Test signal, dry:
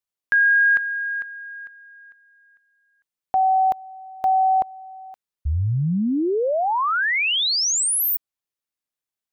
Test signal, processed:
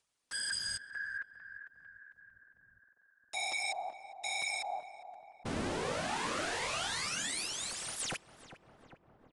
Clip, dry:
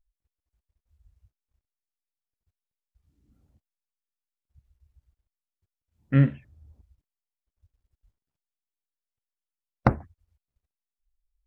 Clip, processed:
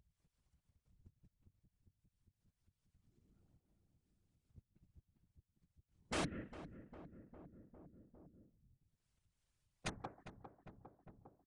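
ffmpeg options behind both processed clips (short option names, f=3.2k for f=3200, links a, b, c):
-filter_complex "[0:a]agate=range=-26dB:threshold=-50dB:ratio=3:release=143:detection=rms,asplit=2[a][b];[b]adelay=180,highpass=300,lowpass=3.4k,asoftclip=type=hard:threshold=-12.5dB,volume=-9dB[c];[a][c]amix=inputs=2:normalize=0,acompressor=threshold=-20dB:ratio=12:attack=2.6:release=756:knee=1:detection=peak,aeval=exprs='(mod(13.3*val(0)+1,2)-1)/13.3':c=same,afftfilt=real='hypot(re,im)*cos(2*PI*random(0))':imag='hypot(re,im)*sin(2*PI*random(1))':win_size=512:overlap=0.75,asplit=2[d][e];[e]adelay=404,lowpass=f=1.1k:p=1,volume=-12.5dB,asplit=2[f][g];[g]adelay=404,lowpass=f=1.1k:p=1,volume=0.53,asplit=2[h][i];[i]adelay=404,lowpass=f=1.1k:p=1,volume=0.53,asplit=2[j][k];[k]adelay=404,lowpass=f=1.1k:p=1,volume=0.53,asplit=2[l][m];[m]adelay=404,lowpass=f=1.1k:p=1,volume=0.53[n];[f][h][j][l][n]amix=inputs=5:normalize=0[o];[d][o]amix=inputs=2:normalize=0,aresample=22050,aresample=44100,acompressor=mode=upward:threshold=-46dB:ratio=2.5:release=197:knee=2.83:detection=peak,volume=-4dB"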